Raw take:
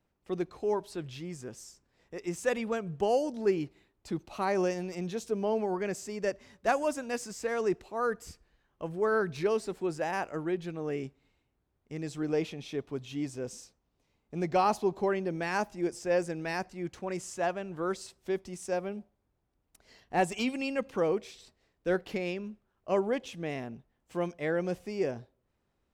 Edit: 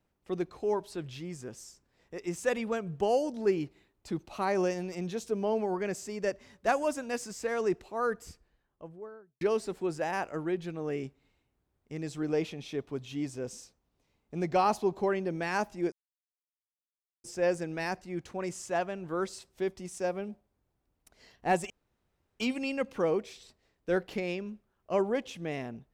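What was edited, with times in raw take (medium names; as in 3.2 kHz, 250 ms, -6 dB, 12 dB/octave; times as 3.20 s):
8.07–9.41 s: studio fade out
15.92 s: insert silence 1.32 s
20.38 s: insert room tone 0.70 s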